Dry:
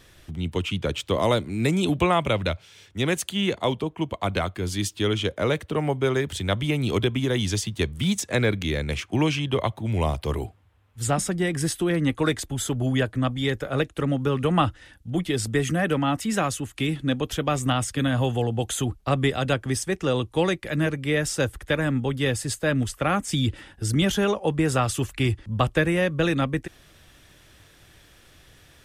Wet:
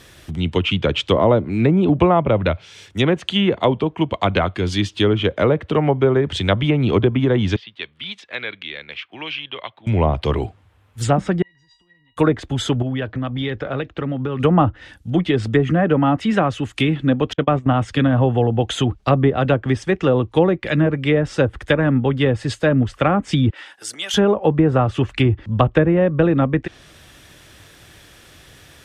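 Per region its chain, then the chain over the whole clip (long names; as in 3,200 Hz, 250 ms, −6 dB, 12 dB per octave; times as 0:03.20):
0:07.56–0:09.87: resonant band-pass 3,900 Hz, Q 0.89 + high-frequency loss of the air 420 metres
0:11.42–0:12.17: low-pass filter 4,500 Hz 24 dB per octave + downward compressor 16 to 1, threshold −31 dBFS + tuned comb filter 950 Hz, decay 0.3 s, mix 100%
0:12.82–0:14.40: Gaussian smoothing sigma 2.2 samples + downward compressor, threshold −27 dBFS
0:17.33–0:17.74: low-pass filter 2,200 Hz 6 dB per octave + noise gate −29 dBFS, range −40 dB
0:23.50–0:24.14: downward compressor 12 to 1, threshold −26 dBFS + high-pass filter 790 Hz
whole clip: high-pass filter 62 Hz 6 dB per octave; treble cut that deepens with the level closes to 920 Hz, closed at −18.5 dBFS; dynamic equaliser 3,100 Hz, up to +4 dB, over −47 dBFS, Q 1.9; level +8 dB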